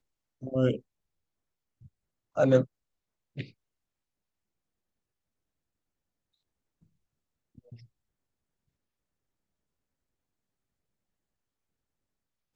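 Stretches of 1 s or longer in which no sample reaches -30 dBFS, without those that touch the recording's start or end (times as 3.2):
0.76–2.37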